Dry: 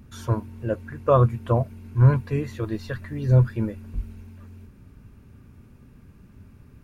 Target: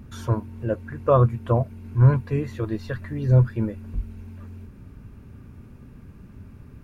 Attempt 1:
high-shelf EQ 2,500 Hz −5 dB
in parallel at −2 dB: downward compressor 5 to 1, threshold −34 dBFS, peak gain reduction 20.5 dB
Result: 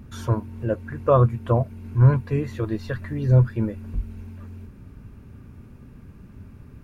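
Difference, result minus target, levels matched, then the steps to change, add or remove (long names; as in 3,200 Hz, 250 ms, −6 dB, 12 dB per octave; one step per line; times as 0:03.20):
downward compressor: peak gain reduction −6 dB
change: downward compressor 5 to 1, threshold −41.5 dBFS, peak gain reduction 26.5 dB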